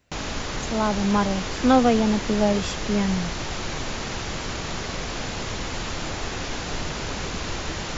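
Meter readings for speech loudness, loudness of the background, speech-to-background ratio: −23.0 LKFS, −30.0 LKFS, 7.0 dB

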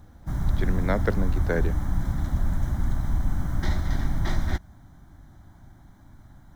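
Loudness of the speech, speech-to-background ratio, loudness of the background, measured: −30.0 LKFS, −1.0 dB, −29.0 LKFS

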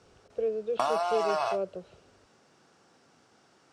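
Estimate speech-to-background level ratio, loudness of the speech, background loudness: −3.0 dB, −33.5 LKFS, −30.5 LKFS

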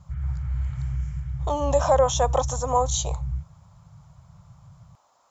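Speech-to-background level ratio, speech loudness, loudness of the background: 7.0 dB, −24.0 LKFS, −31.0 LKFS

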